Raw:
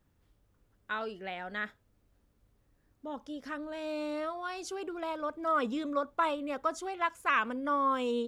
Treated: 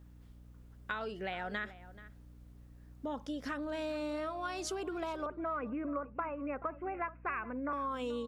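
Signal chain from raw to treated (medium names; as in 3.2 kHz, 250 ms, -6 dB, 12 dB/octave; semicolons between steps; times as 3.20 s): 5.26–7.73 s: steep low-pass 2.6 kHz 96 dB/octave; compression 6:1, threshold -41 dBFS, peak gain reduction 16.5 dB; hum 60 Hz, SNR 16 dB; echo from a far wall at 74 m, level -16 dB; trim +5.5 dB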